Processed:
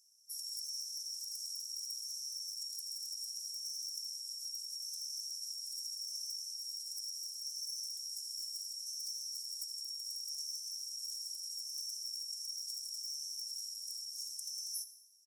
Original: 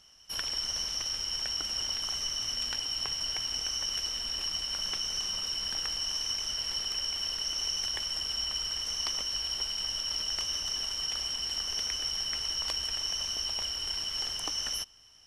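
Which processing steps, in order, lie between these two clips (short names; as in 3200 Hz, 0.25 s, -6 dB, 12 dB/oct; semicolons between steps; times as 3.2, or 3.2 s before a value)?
one-sided fold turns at -25 dBFS; inverse Chebyshev high-pass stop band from 2900 Hz, stop band 50 dB; formant-preserving pitch shift -1.5 st; feedback echo 83 ms, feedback 53%, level -14 dB; gain +2.5 dB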